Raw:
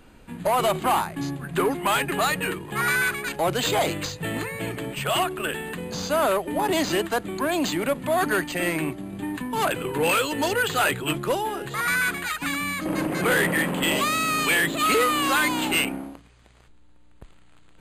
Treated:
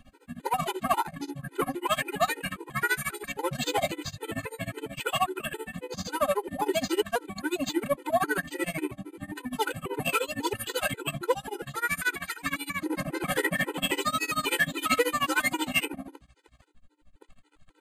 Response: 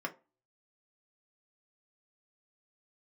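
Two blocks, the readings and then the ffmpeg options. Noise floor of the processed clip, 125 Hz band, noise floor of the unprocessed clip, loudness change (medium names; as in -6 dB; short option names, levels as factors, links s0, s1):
-63 dBFS, -6.5 dB, -50 dBFS, -5.5 dB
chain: -filter_complex "[0:a]tremolo=f=13:d=0.96,asplit=2[s0][s1];[1:a]atrim=start_sample=2205,afade=t=out:st=0.44:d=0.01,atrim=end_sample=19845,highshelf=f=5100:g=-5[s2];[s1][s2]afir=irnorm=-1:irlink=0,volume=0.075[s3];[s0][s3]amix=inputs=2:normalize=0,afftfilt=real='re*gt(sin(2*PI*3.7*pts/sr)*(1-2*mod(floor(b*sr/1024/260),2)),0)':imag='im*gt(sin(2*PI*3.7*pts/sr)*(1-2*mod(floor(b*sr/1024/260),2)),0)':win_size=1024:overlap=0.75,volume=1.19"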